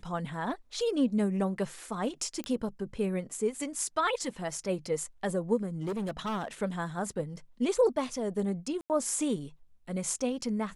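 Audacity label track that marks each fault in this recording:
2.440000	2.440000	pop -22 dBFS
5.830000	6.480000	clipped -29.5 dBFS
8.810000	8.900000	dropout 88 ms

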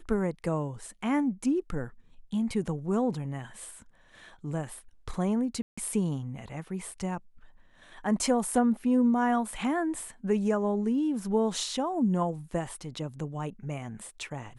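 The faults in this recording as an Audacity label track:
5.620000	5.780000	dropout 155 ms

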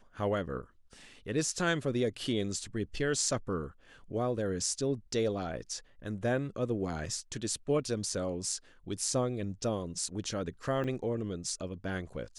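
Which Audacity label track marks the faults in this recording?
10.840000	10.840000	dropout 3.7 ms

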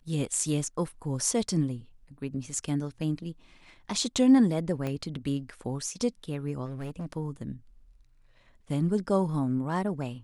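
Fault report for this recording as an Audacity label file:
4.870000	4.870000	pop -20 dBFS
6.650000	7.060000	clipped -32 dBFS

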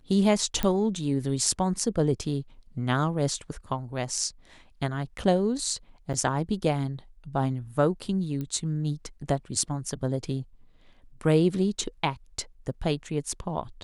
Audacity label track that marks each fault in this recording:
0.630000	0.630000	pop -12 dBFS
6.130000	6.140000	dropout 8.7 ms
8.410000	8.410000	pop -22 dBFS

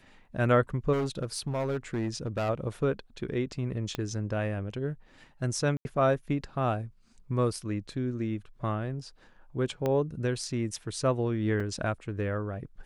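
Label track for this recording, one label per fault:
0.920000	2.500000	clipped -26 dBFS
3.950000	3.950000	pop -18 dBFS
5.770000	5.850000	dropout 81 ms
9.860000	9.860000	pop -17 dBFS
11.600000	11.600000	dropout 3.7 ms

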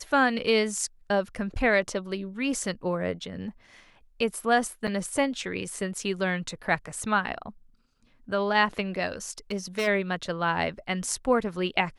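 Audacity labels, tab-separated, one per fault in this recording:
4.870000	4.880000	dropout 6.6 ms
9.510000	9.880000	clipped -23.5 dBFS

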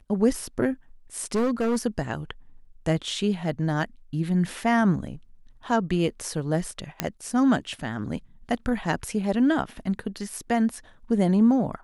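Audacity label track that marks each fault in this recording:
1.350000	1.860000	clipped -20 dBFS
7.000000	7.000000	pop -7 dBFS

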